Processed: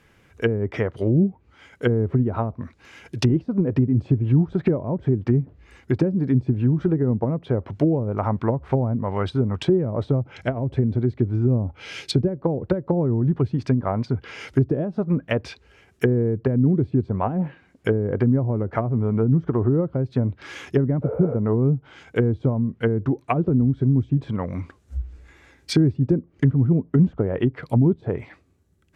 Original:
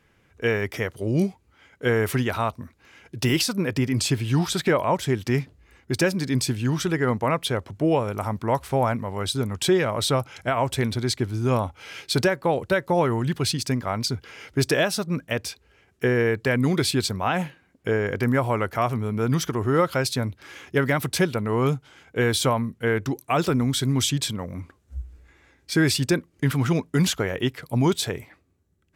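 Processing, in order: treble ducked by the level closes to 310 Hz, closed at -19 dBFS; 10.22–12.45 bell 1100 Hz -5 dB 1.5 oct; 21.06–21.32 spectral repair 410–11000 Hz after; gain +5 dB

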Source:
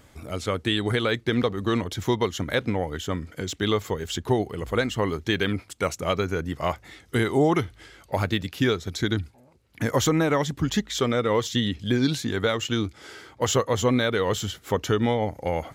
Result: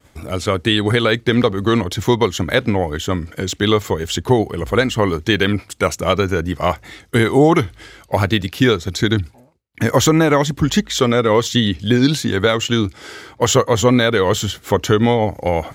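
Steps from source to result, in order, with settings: expander -48 dBFS; gain +8.5 dB

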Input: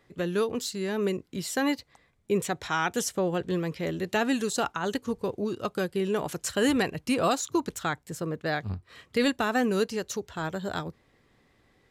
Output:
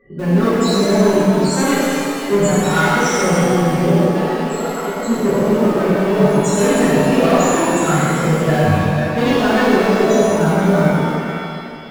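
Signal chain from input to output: reverse delay 0.282 s, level -11.5 dB; flange 1.8 Hz, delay 3.9 ms, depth 3.4 ms, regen -68%; loudest bins only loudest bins 16; in parallel at -11 dB: bit-crush 6-bit; on the sum: soft clip -31.5 dBFS, distortion -9 dB; 4.07–5 resonator 480 Hz, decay 0.4 s, mix 80%; on a send: band-limited delay 0.143 s, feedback 59%, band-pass 820 Hz, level -8 dB; on the sum: dynamic EQ 180 Hz, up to +6 dB, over -51 dBFS, Q 2.4; maximiser +32 dB; shimmer reverb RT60 2.1 s, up +7 st, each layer -8 dB, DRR -9 dB; gain -17 dB

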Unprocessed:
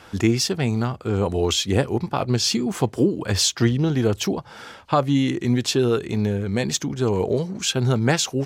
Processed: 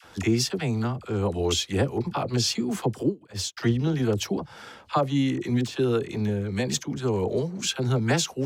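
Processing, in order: 5.23–5.92 de-esser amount 65%; dispersion lows, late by 45 ms, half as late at 640 Hz; 3.03–3.57 upward expander 2.5:1, over -34 dBFS; gain -4 dB

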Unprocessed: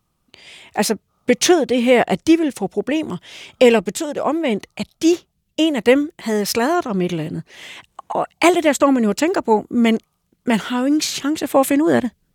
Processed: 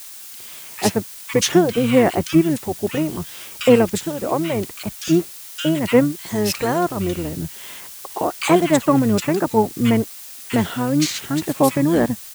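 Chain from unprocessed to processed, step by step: bands offset in time highs, lows 60 ms, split 2200 Hz; added noise blue -36 dBFS; harmoniser -12 st -7 dB; gain -2 dB

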